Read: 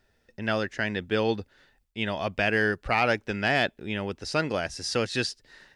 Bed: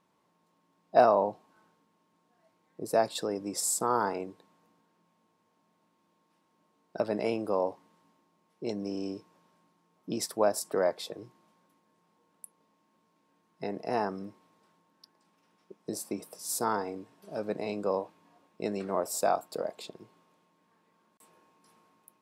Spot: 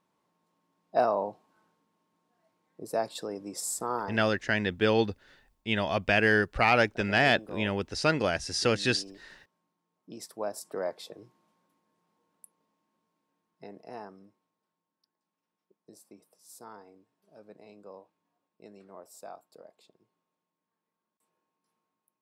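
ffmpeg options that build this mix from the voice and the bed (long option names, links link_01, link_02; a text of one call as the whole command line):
ffmpeg -i stem1.wav -i stem2.wav -filter_complex "[0:a]adelay=3700,volume=1dB[link_01];[1:a]volume=2.5dB,afade=type=out:start_time=3.95:duration=0.23:silence=0.421697,afade=type=in:start_time=10.1:duration=0.86:silence=0.473151,afade=type=out:start_time=12.25:duration=2.29:silence=0.223872[link_02];[link_01][link_02]amix=inputs=2:normalize=0" out.wav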